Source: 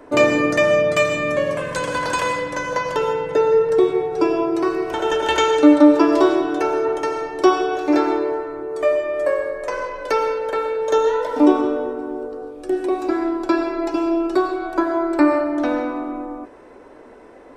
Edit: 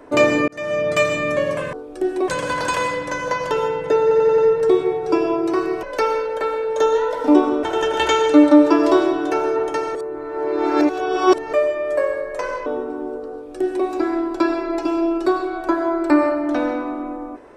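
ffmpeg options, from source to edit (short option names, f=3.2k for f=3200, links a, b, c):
-filter_complex "[0:a]asplit=13[a][b][c][d][e][f][g][h][i][j][k][l][m];[a]atrim=end=0.48,asetpts=PTS-STARTPTS,afade=t=out:st=0.476:d=0.004:c=hsin[n];[b]atrim=start=0.48:end=1.732,asetpts=PTS-STARTPTS,afade=t=in:d=0.51[o];[c]atrim=start=12.408:end=12.962[p];[d]atrim=start=1.728:end=3.562[q];[e]atrim=start=3.468:end=3.562[r];[f]atrim=start=3.468:end=3.562[s];[g]atrim=start=3.468:end=3.562[t];[h]atrim=start=3.468:end=4.922[u];[i]atrim=start=9.948:end=11.752[v];[j]atrim=start=4.918:end=7.242[w];[k]atrim=start=7.238:end=8.822,asetpts=PTS-STARTPTS,areverse[x];[l]atrim=start=8.818:end=9.952[y];[m]atrim=start=11.748[z];[n][o]concat=n=2:v=0:a=1[aa];[aa][p]acrossfade=d=0.004:c1=hsin:c2=hsin[ab];[ab][q]acrossfade=d=0.004:c1=hsin:c2=hsin[ac];[ac][r]acrossfade=d=0.004:c1=hsin:c2=hsin[ad];[ad][s]acrossfade=d=0.004:c1=hsin:c2=hsin[ae];[ae][t]acrossfade=d=0.004:c1=hsin:c2=hsin[af];[af][u]acrossfade=d=0.004:c1=hsin:c2=hsin[ag];[ag][v]acrossfade=d=0.004:c1=hsin:c2=hsin[ah];[ah][w]acrossfade=d=0.004:c1=hsin:c2=hsin[ai];[ai][x]acrossfade=d=0.004:c1=hsin:c2=hsin[aj];[aj][y]acrossfade=d=0.004:c1=hsin:c2=hsin[ak];[ak][z]acrossfade=d=0.004:c1=hsin:c2=hsin"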